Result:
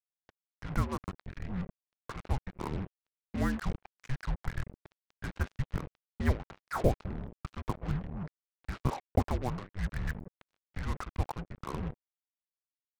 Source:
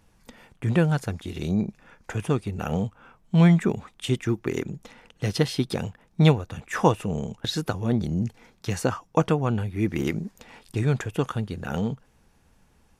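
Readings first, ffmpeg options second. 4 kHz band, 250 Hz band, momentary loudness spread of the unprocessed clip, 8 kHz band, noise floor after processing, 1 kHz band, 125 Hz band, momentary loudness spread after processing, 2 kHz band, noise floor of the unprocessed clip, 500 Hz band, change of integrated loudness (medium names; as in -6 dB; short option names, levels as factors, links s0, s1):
-16.5 dB, -13.5 dB, 13 LU, -14.0 dB, under -85 dBFS, -8.0 dB, -11.0 dB, 13 LU, -9.0 dB, -62 dBFS, -12.0 dB, -11.0 dB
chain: -af "lowshelf=f=61:g=9.5,highpass=f=260:t=q:w=0.5412,highpass=f=260:t=q:w=1.307,lowpass=f=2300:t=q:w=0.5176,lowpass=f=2300:t=q:w=0.7071,lowpass=f=2300:t=q:w=1.932,afreqshift=-390,acrusher=bits=5:mix=0:aa=0.5,volume=0.596"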